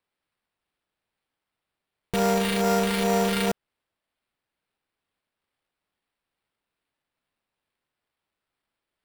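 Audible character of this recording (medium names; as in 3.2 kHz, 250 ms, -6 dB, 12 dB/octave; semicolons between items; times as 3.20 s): phasing stages 2, 2.3 Hz, lowest notch 790–4000 Hz; aliases and images of a low sample rate 6.5 kHz, jitter 0%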